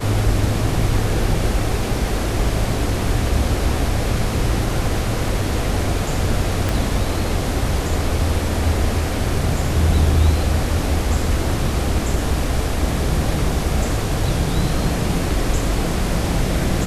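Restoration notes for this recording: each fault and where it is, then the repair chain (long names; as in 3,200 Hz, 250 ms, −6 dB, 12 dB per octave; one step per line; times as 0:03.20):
0:06.69: click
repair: click removal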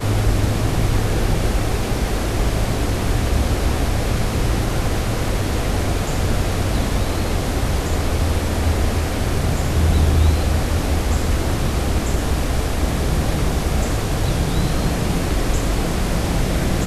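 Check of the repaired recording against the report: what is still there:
0:06.69: click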